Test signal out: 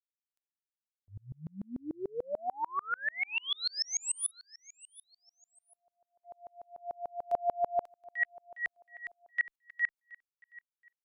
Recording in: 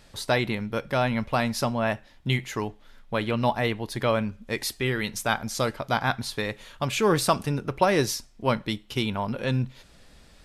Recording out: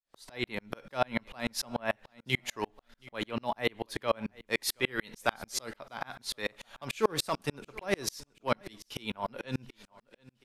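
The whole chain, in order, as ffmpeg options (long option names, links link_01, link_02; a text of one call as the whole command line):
ffmpeg -i in.wav -filter_complex "[0:a]agate=range=-15dB:threshold=-48dB:ratio=16:detection=peak,acrossover=split=400[link_01][link_02];[link_02]acompressor=threshold=-26dB:ratio=2[link_03];[link_01][link_03]amix=inputs=2:normalize=0,equalizer=frequency=68:width=0.36:gain=-14.5,asoftclip=type=hard:threshold=-16.5dB,aecho=1:1:724|1448:0.0891|0.0258,dynaudnorm=framelen=140:gausssize=5:maxgain=6dB,aeval=exprs='val(0)*pow(10,-38*if(lt(mod(-6.8*n/s,1),2*abs(-6.8)/1000),1-mod(-6.8*n/s,1)/(2*abs(-6.8)/1000),(mod(-6.8*n/s,1)-2*abs(-6.8)/1000)/(1-2*abs(-6.8)/1000))/20)':channel_layout=same" out.wav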